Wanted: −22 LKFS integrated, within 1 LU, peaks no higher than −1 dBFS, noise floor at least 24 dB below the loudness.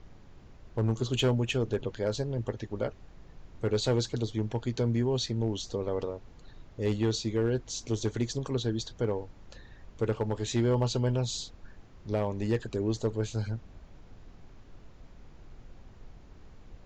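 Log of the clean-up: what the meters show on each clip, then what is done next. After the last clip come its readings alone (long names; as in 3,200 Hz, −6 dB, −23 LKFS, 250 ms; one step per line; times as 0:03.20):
share of clipped samples 0.4%; peaks flattened at −20.0 dBFS; background noise floor −53 dBFS; target noise floor −55 dBFS; integrated loudness −31.0 LKFS; sample peak −20.0 dBFS; target loudness −22.0 LKFS
→ clipped peaks rebuilt −20 dBFS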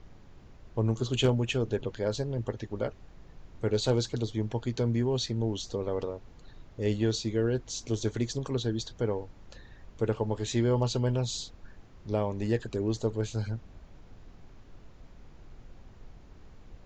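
share of clipped samples 0.0%; background noise floor −53 dBFS; target noise floor −55 dBFS
→ noise reduction from a noise print 6 dB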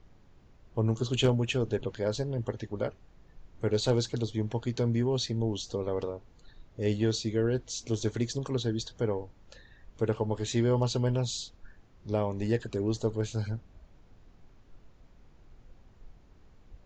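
background noise floor −58 dBFS; integrated loudness −31.0 LKFS; sample peak −12.0 dBFS; target loudness −22.0 LKFS
→ level +9 dB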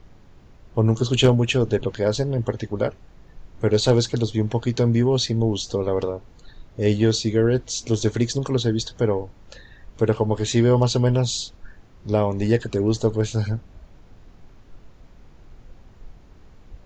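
integrated loudness −22.0 LKFS; sample peak −3.0 dBFS; background noise floor −49 dBFS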